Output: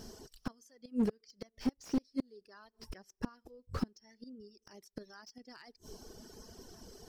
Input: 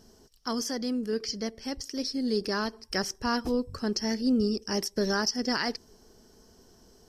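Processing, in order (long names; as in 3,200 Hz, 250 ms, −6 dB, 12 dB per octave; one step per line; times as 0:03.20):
gate with flip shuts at −23 dBFS, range −31 dB
reverb reduction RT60 1.5 s
slew-rate limiting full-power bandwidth 6.8 Hz
level +7.5 dB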